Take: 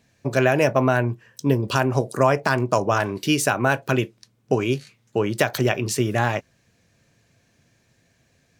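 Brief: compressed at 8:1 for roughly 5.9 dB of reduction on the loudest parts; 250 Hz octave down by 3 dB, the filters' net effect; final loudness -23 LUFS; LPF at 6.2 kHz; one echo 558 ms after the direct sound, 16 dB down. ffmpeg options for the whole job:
-af "lowpass=6200,equalizer=f=250:t=o:g=-4,acompressor=threshold=0.1:ratio=8,aecho=1:1:558:0.158,volume=1.58"

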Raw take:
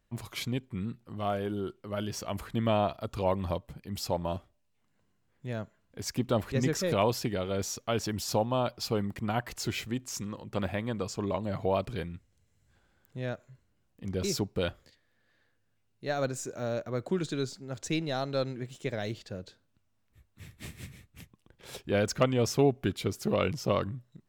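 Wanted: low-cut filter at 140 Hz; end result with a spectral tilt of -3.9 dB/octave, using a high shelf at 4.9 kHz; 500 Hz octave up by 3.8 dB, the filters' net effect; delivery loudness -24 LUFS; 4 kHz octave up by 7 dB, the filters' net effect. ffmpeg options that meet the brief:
-af "highpass=140,equalizer=f=500:t=o:g=4.5,equalizer=f=4000:t=o:g=7,highshelf=f=4900:g=4,volume=1.88"

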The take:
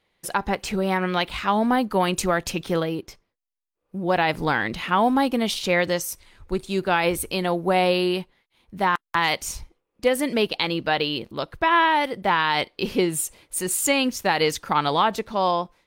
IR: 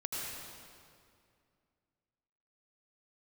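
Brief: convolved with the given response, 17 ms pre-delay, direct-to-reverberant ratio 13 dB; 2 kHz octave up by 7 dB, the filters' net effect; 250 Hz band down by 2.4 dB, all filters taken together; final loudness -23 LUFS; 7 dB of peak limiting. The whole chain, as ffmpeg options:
-filter_complex "[0:a]equalizer=f=250:t=o:g=-3.5,equalizer=f=2000:t=o:g=8.5,alimiter=limit=0.355:level=0:latency=1,asplit=2[s0][s1];[1:a]atrim=start_sample=2205,adelay=17[s2];[s1][s2]afir=irnorm=-1:irlink=0,volume=0.158[s3];[s0][s3]amix=inputs=2:normalize=0,volume=0.891"

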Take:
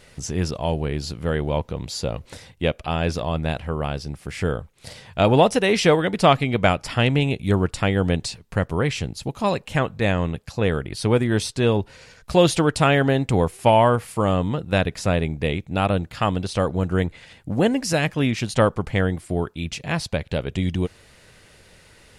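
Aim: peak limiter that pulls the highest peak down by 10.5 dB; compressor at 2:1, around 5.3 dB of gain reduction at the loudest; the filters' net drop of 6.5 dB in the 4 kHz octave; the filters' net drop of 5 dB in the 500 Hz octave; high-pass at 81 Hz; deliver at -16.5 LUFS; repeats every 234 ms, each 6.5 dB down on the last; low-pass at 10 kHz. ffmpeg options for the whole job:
-af "highpass=81,lowpass=10000,equalizer=f=500:t=o:g=-6,equalizer=f=4000:t=o:g=-9,acompressor=threshold=0.0708:ratio=2,alimiter=limit=0.0891:level=0:latency=1,aecho=1:1:234|468|702|936|1170|1404:0.473|0.222|0.105|0.0491|0.0231|0.0109,volume=5.31"

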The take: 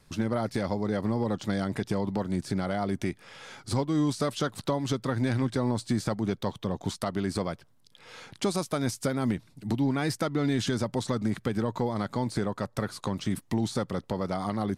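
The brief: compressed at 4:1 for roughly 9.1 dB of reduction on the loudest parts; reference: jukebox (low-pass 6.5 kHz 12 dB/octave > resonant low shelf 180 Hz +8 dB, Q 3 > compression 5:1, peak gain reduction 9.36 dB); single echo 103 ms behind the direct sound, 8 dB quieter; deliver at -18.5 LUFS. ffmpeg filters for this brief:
-af "acompressor=threshold=0.02:ratio=4,lowpass=6500,lowshelf=f=180:t=q:w=3:g=8,aecho=1:1:103:0.398,acompressor=threshold=0.0282:ratio=5,volume=7.94"

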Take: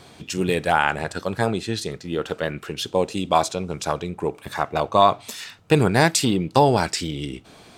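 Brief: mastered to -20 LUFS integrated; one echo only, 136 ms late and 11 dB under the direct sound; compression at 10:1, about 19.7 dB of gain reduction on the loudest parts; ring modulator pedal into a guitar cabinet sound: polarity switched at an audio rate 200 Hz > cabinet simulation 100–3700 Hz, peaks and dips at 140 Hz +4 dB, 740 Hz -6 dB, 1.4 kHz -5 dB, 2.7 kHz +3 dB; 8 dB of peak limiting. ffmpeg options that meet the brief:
-af "acompressor=threshold=0.0282:ratio=10,alimiter=limit=0.0668:level=0:latency=1,aecho=1:1:136:0.282,aeval=exprs='val(0)*sgn(sin(2*PI*200*n/s))':c=same,highpass=100,equalizer=f=140:t=q:w=4:g=4,equalizer=f=740:t=q:w=4:g=-6,equalizer=f=1400:t=q:w=4:g=-5,equalizer=f=2700:t=q:w=4:g=3,lowpass=f=3700:w=0.5412,lowpass=f=3700:w=1.3066,volume=8.91"

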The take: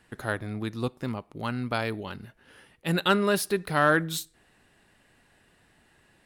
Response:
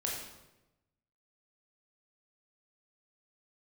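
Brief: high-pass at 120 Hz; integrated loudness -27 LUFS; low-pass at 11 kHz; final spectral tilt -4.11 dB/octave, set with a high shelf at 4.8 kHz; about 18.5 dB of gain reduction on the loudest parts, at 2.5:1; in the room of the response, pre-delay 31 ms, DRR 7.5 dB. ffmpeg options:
-filter_complex "[0:a]highpass=120,lowpass=11000,highshelf=f=4800:g=5.5,acompressor=threshold=0.00501:ratio=2.5,asplit=2[s0][s1];[1:a]atrim=start_sample=2205,adelay=31[s2];[s1][s2]afir=irnorm=-1:irlink=0,volume=0.282[s3];[s0][s3]amix=inputs=2:normalize=0,volume=6.31"

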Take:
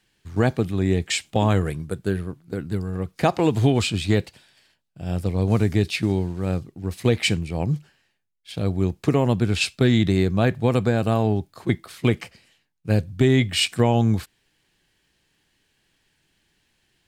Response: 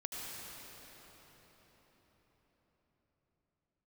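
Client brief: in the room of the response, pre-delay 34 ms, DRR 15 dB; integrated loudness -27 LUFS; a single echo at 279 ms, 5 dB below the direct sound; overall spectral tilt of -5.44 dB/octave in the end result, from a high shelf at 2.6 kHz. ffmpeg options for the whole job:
-filter_complex "[0:a]highshelf=f=2600:g=4,aecho=1:1:279:0.562,asplit=2[s0][s1];[1:a]atrim=start_sample=2205,adelay=34[s2];[s1][s2]afir=irnorm=-1:irlink=0,volume=0.158[s3];[s0][s3]amix=inputs=2:normalize=0,volume=0.501"

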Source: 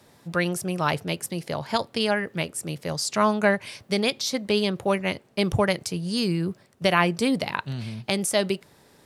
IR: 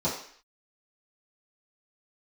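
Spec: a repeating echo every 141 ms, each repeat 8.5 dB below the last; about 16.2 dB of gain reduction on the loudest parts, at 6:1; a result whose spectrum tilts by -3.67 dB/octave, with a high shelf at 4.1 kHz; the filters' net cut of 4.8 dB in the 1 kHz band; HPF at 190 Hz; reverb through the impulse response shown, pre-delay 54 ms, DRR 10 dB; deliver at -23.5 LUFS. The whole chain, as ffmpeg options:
-filter_complex "[0:a]highpass=190,equalizer=f=1000:t=o:g=-6.5,highshelf=f=4100:g=6,acompressor=threshold=0.0158:ratio=6,aecho=1:1:141|282|423|564:0.376|0.143|0.0543|0.0206,asplit=2[s0][s1];[1:a]atrim=start_sample=2205,adelay=54[s2];[s1][s2]afir=irnorm=-1:irlink=0,volume=0.1[s3];[s0][s3]amix=inputs=2:normalize=0,volume=5.31"

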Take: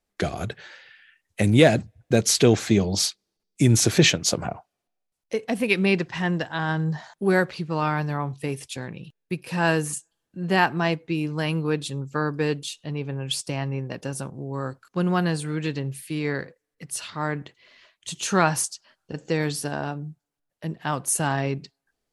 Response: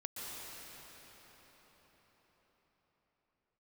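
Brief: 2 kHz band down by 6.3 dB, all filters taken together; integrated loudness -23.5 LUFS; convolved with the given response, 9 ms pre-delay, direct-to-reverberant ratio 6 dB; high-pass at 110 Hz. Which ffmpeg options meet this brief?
-filter_complex "[0:a]highpass=110,equalizer=f=2000:t=o:g=-8.5,asplit=2[s0][s1];[1:a]atrim=start_sample=2205,adelay=9[s2];[s1][s2]afir=irnorm=-1:irlink=0,volume=0.447[s3];[s0][s3]amix=inputs=2:normalize=0,volume=1.19"

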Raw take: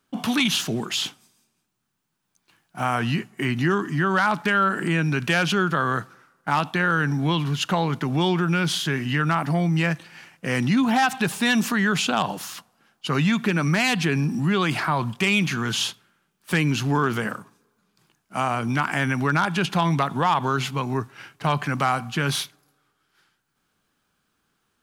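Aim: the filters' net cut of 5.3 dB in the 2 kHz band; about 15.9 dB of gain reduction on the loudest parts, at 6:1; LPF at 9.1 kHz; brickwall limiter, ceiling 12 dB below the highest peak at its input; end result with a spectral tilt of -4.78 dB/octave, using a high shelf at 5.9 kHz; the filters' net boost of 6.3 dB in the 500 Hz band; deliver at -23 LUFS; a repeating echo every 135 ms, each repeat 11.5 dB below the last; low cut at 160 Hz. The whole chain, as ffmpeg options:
-af "highpass=160,lowpass=9100,equalizer=f=500:t=o:g=9,equalizer=f=2000:t=o:g=-8.5,highshelf=f=5900:g=3.5,acompressor=threshold=0.0224:ratio=6,alimiter=level_in=2:limit=0.0631:level=0:latency=1,volume=0.501,aecho=1:1:135|270|405:0.266|0.0718|0.0194,volume=6.31"

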